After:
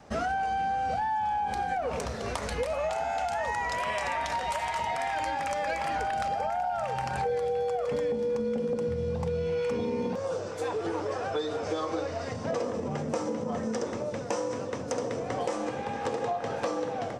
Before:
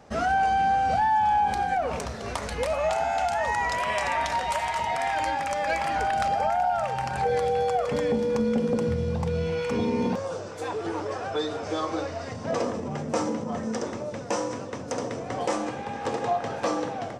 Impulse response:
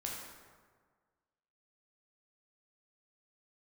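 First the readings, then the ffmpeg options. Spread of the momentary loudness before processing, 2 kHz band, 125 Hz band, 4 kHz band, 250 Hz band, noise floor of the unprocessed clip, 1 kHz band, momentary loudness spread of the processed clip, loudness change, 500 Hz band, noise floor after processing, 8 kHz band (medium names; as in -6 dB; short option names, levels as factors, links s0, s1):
9 LU, -4.5 dB, -4.5 dB, -4.0 dB, -5.0 dB, -36 dBFS, -5.0 dB, 4 LU, -4.0 dB, -2.0 dB, -36 dBFS, -3.5 dB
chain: -af "adynamicequalizer=threshold=0.0112:dfrequency=490:dqfactor=6:tfrequency=490:tqfactor=6:attack=5:release=100:ratio=0.375:range=3:mode=boostabove:tftype=bell,acompressor=threshold=0.0447:ratio=6"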